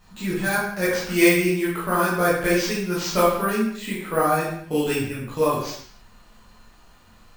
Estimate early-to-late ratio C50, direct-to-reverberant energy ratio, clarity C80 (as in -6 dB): 1.5 dB, -8.5 dB, 5.0 dB